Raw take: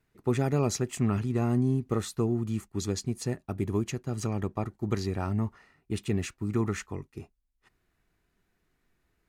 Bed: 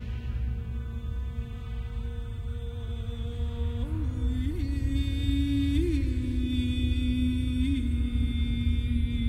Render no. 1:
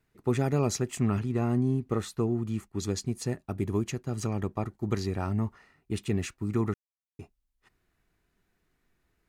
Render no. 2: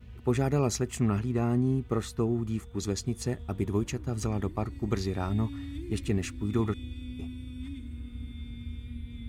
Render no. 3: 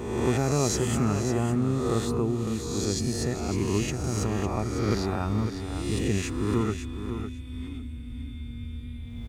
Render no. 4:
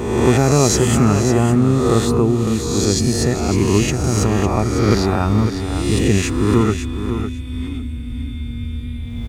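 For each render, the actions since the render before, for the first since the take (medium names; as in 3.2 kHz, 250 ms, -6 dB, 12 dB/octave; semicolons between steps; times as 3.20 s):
1.19–2.83 s: tone controls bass -1 dB, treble -4 dB; 6.74–7.19 s: mute
add bed -12.5 dB
reverse spectral sustain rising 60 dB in 1.28 s; feedback delay 553 ms, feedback 15%, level -9 dB
trim +11 dB; peak limiter -2 dBFS, peak gain reduction 0.5 dB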